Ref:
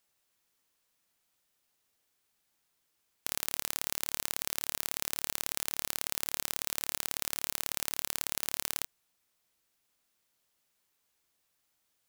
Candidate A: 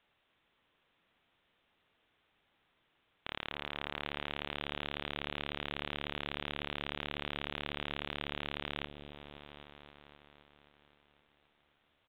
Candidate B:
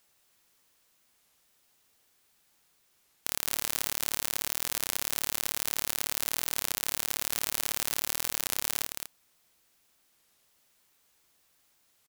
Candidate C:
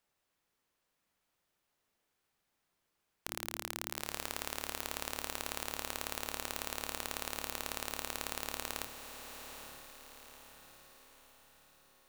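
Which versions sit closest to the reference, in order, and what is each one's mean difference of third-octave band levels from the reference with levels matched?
B, C, A; 1.0 dB, 4.0 dB, 17.5 dB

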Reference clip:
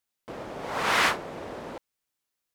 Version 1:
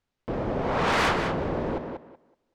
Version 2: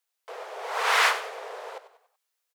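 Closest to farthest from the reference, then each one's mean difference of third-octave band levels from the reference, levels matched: 1, 2; 7.0 dB, 9.0 dB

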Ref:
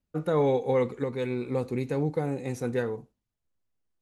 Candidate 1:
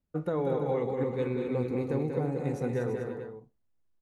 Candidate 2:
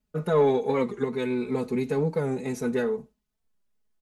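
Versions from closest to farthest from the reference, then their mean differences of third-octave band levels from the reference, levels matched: 2, 1; 2.5 dB, 5.0 dB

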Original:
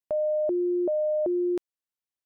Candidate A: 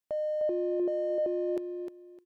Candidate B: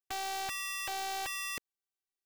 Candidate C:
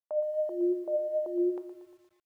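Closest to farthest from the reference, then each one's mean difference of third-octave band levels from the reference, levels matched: C, A, B; 4.0 dB, 5.0 dB, 26.0 dB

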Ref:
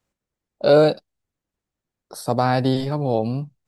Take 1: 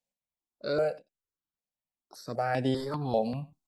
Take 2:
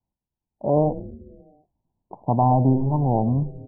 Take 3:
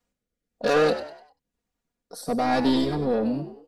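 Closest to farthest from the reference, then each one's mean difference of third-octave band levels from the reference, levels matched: 1, 3, 2; 4.0 dB, 5.5 dB, 9.0 dB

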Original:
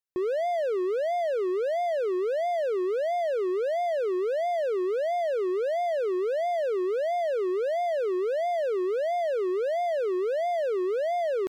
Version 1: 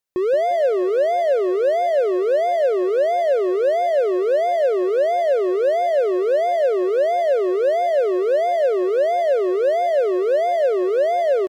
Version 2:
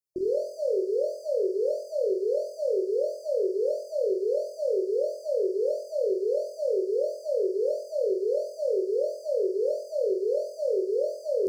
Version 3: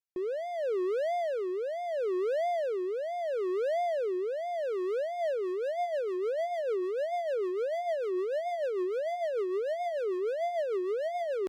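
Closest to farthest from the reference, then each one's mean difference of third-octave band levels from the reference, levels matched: 3, 1, 2; 1.0 dB, 4.0 dB, 8.0 dB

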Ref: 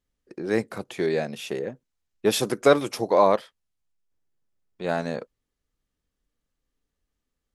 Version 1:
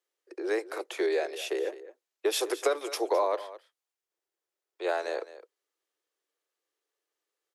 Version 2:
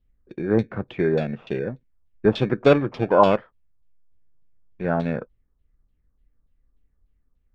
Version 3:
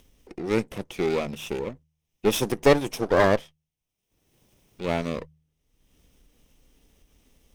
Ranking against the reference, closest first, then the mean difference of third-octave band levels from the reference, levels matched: 3, 2, 1; 4.0 dB, 6.0 dB, 9.0 dB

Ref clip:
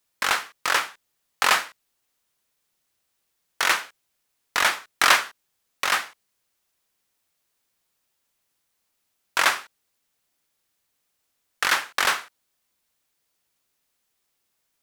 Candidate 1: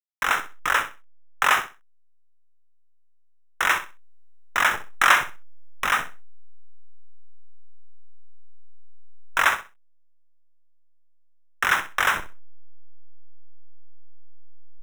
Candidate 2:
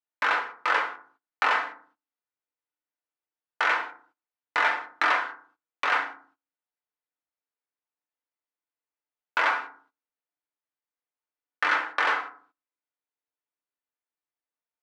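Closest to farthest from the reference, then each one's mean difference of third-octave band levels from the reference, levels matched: 1, 2; 4.0 dB, 9.5 dB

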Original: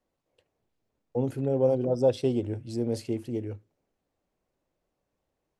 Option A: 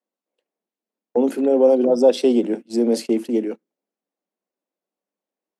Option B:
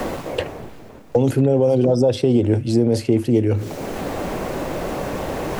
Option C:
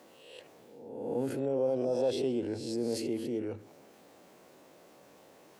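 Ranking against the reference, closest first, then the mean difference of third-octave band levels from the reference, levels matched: B, A, C; 3.5 dB, 5.0 dB, 6.5 dB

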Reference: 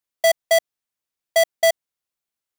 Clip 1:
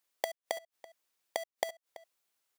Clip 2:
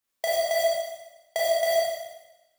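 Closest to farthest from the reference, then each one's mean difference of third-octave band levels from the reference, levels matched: 2, 1; 5.0 dB, 8.0 dB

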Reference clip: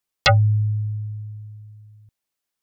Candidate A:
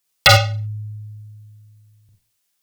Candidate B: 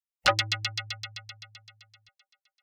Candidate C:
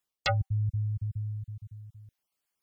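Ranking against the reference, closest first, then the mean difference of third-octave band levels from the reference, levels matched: C, A, B; 2.0 dB, 3.5 dB, 10.5 dB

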